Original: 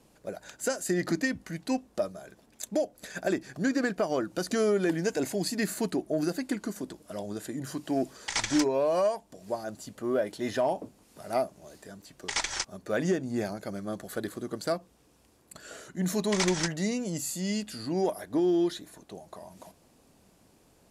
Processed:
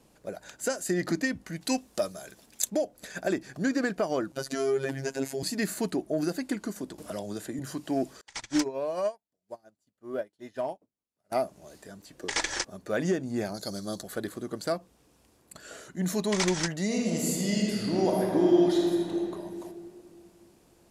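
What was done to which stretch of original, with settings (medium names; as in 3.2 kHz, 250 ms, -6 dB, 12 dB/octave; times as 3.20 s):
1.61–2.70 s: treble shelf 2.4 kHz +11.5 dB
4.32–5.43 s: robot voice 135 Hz
6.98–7.59 s: three bands compressed up and down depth 70%
8.21–11.32 s: upward expansion 2.5:1, over -46 dBFS
12.10–12.69 s: small resonant body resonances 320/480/1700 Hz, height 7 dB -> 10 dB, ringing for 25 ms
13.54–14.03 s: resonant high shelf 3.2 kHz +9.5 dB, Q 3
16.85–19.15 s: reverb throw, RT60 2.6 s, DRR -3 dB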